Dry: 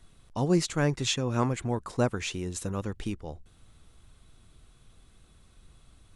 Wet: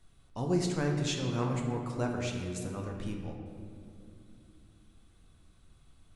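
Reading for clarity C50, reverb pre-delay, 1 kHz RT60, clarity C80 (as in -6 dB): 3.5 dB, 9 ms, 2.1 s, 4.5 dB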